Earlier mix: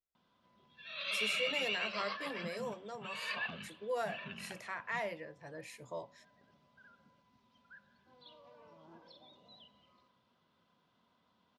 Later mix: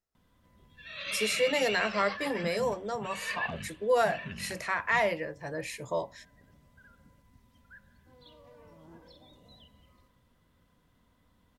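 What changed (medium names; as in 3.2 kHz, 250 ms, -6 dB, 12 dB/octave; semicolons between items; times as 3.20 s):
speech +11.5 dB; background: remove cabinet simulation 250–5100 Hz, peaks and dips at 290 Hz -8 dB, 490 Hz -6 dB, 1.9 kHz -9 dB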